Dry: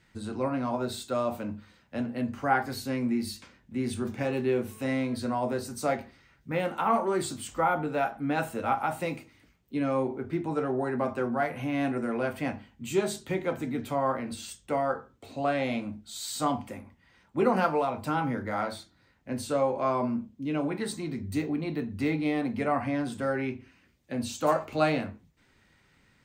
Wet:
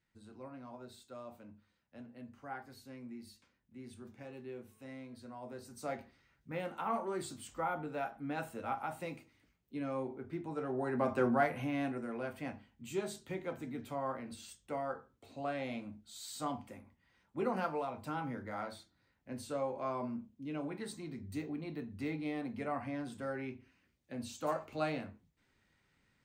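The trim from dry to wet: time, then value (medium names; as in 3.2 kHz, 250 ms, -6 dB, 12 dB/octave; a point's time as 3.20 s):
5.32 s -19.5 dB
5.99 s -10.5 dB
10.55 s -10.5 dB
11.28 s 0 dB
12.04 s -10.5 dB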